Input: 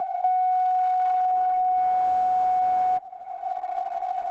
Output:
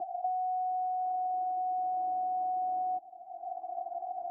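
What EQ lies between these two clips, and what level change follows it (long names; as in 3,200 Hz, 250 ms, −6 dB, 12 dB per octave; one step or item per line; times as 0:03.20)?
pair of resonant band-passes 480 Hz, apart 0.96 octaves
high-frequency loss of the air 190 metres
spectral tilt −4 dB per octave
−7.0 dB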